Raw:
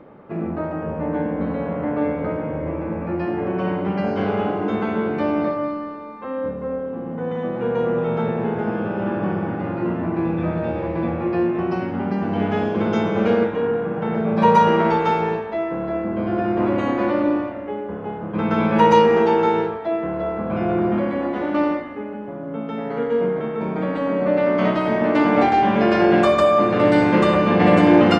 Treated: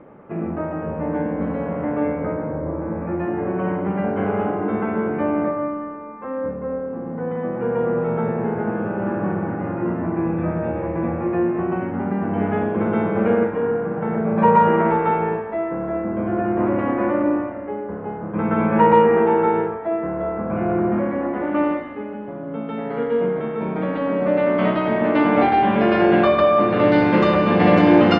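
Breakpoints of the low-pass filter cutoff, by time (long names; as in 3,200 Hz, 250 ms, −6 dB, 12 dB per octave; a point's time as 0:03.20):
low-pass filter 24 dB per octave
0:02.03 2,800 Hz
0:02.69 1,500 Hz
0:03.11 2,200 Hz
0:21.36 2,200 Hz
0:21.93 3,700 Hz
0:26.61 3,700 Hz
0:27.27 5,400 Hz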